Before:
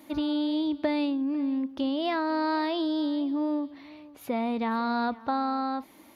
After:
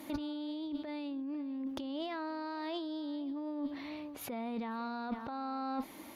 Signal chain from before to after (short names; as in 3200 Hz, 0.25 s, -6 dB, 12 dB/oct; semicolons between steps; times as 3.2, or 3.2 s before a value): negative-ratio compressor -35 dBFS, ratio -1; added harmonics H 2 -16 dB, 4 -16 dB, 6 -27 dB, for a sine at -19.5 dBFS; gain -3.5 dB